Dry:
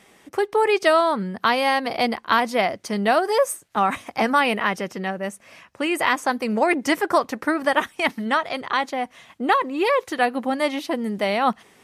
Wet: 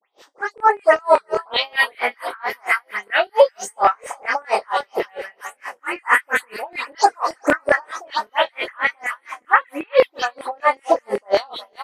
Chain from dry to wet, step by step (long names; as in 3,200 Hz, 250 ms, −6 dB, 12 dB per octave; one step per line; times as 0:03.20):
every frequency bin delayed by itself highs late, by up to 181 ms
high-pass filter 320 Hz 12 dB per octave
high-shelf EQ 4,900 Hz −5 dB
in parallel at −0.5 dB: downward compressor, threshold −32 dBFS, peak gain reduction 16.5 dB
on the sum: all-pass phaser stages 4, 0.3 Hz, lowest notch 550–3,600 Hz
echo with a time of its own for lows and highs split 500 Hz, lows 630 ms, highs 363 ms, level −14.5 dB
auto-filter high-pass saw down 5.2 Hz 430–2,200 Hz
double-tracking delay 25 ms −3 dB
boost into a limiter +9 dB
tremolo with a sine in dB 4.4 Hz, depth 36 dB